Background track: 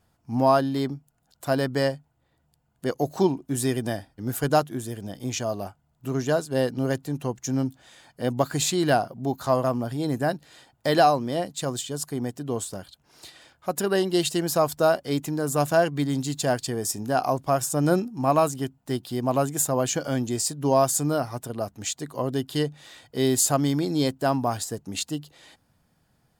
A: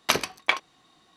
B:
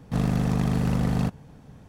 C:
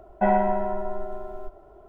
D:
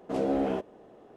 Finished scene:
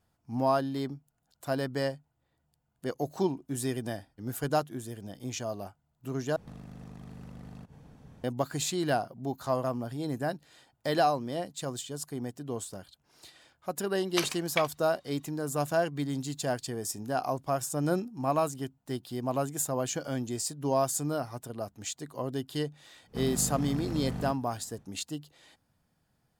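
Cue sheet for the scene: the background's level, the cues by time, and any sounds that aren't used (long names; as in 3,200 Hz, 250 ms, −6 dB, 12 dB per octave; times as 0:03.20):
background track −7 dB
0:06.36: overwrite with B −5 dB + downward compressor 8 to 1, threshold −38 dBFS
0:14.08: mix in A −10.5 dB + tilt shelving filter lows −3.5 dB
0:23.03: mix in B −11.5 dB, fades 0.10 s
not used: C, D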